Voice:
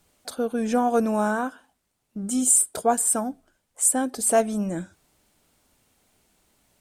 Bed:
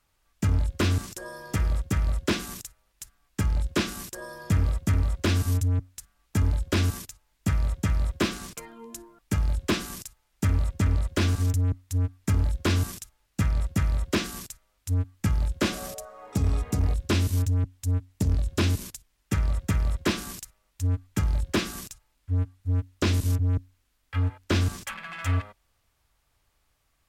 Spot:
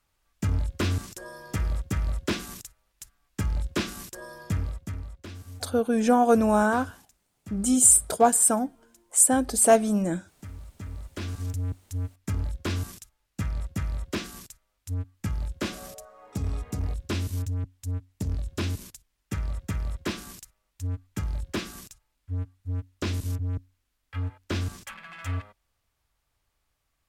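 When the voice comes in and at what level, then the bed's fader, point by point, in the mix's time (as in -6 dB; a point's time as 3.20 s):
5.35 s, +2.0 dB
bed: 4.41 s -2.5 dB
5.29 s -18 dB
10.63 s -18 dB
11.62 s -5.5 dB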